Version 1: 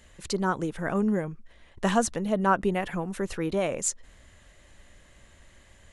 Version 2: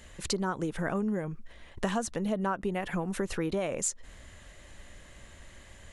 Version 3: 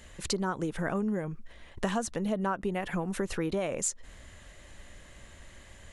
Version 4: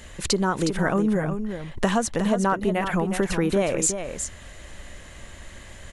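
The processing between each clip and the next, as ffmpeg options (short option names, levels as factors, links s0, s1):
-af "acompressor=threshold=0.0251:ratio=5,volume=1.58"
-af anull
-af "aecho=1:1:364:0.398,volume=2.51"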